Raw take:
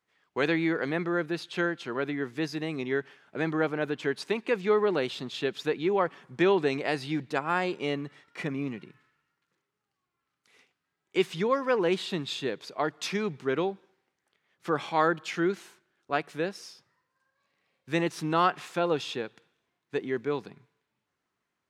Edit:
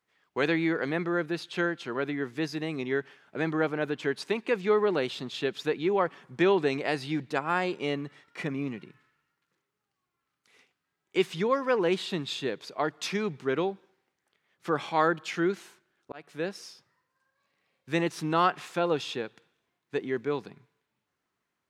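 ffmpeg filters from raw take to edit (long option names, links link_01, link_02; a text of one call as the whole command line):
ffmpeg -i in.wav -filter_complex "[0:a]asplit=2[link_01][link_02];[link_01]atrim=end=16.12,asetpts=PTS-STARTPTS,afade=type=out:start_time=16.116:duration=0.004:curve=hsin[link_03];[link_02]atrim=start=16.12,asetpts=PTS-STARTPTS,afade=type=in:duration=0.38[link_04];[link_03][link_04]concat=n=2:v=0:a=1" out.wav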